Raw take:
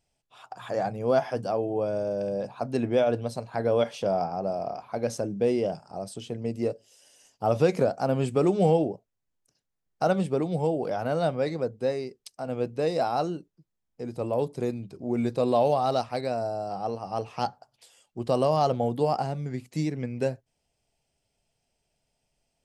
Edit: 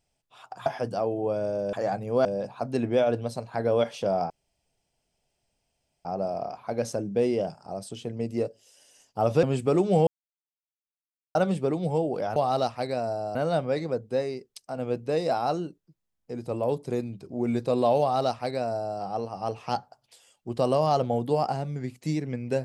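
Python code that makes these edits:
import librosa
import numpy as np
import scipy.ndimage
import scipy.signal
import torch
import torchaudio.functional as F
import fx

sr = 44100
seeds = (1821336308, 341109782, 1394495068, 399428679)

y = fx.edit(x, sr, fx.move(start_s=0.66, length_s=0.52, to_s=2.25),
    fx.insert_room_tone(at_s=4.3, length_s=1.75),
    fx.cut(start_s=7.68, length_s=0.44),
    fx.silence(start_s=8.76, length_s=1.28),
    fx.duplicate(start_s=15.7, length_s=0.99, to_s=11.05), tone=tone)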